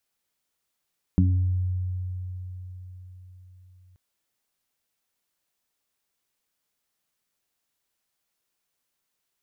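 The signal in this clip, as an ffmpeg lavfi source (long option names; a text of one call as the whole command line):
ffmpeg -f lavfi -i "aevalsrc='0.141*pow(10,-3*t/4.63)*sin(2*PI*91.5*t)+0.188*pow(10,-3*t/0.26)*sin(2*PI*183*t)+0.0708*pow(10,-3*t/0.61)*sin(2*PI*274.5*t)':duration=2.78:sample_rate=44100" out.wav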